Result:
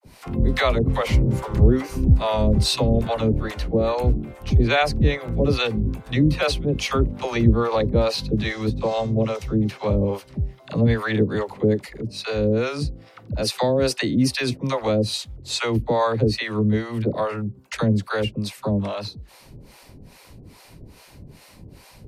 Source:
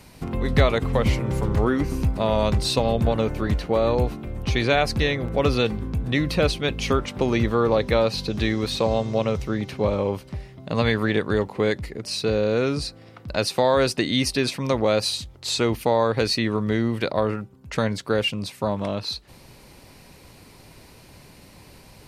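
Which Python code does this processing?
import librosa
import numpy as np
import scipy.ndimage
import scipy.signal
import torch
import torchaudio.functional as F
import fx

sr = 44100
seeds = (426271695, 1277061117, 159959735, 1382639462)

y = fx.low_shelf(x, sr, hz=310.0, db=5.5)
y = fx.dispersion(y, sr, late='lows', ms=55.0, hz=530.0)
y = fx.harmonic_tremolo(y, sr, hz=2.4, depth_pct=100, crossover_hz=540.0)
y = y * 10.0 ** (3.5 / 20.0)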